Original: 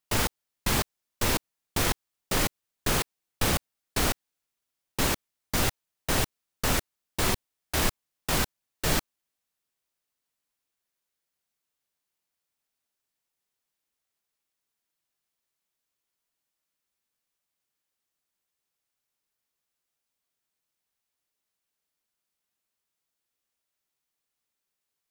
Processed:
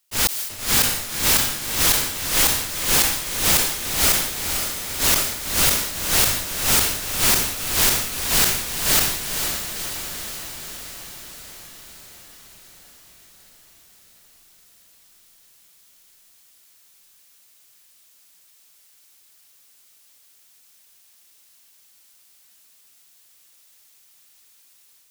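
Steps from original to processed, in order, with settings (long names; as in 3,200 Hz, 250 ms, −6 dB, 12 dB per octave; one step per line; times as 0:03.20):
high-shelf EQ 2,100 Hz +12 dB
automatic gain control
volume swells 217 ms
wave folding −17 dBFS
feedback delay with all-pass diffusion 518 ms, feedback 65%, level −5 dB
level that may fall only so fast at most 62 dB per second
level +5.5 dB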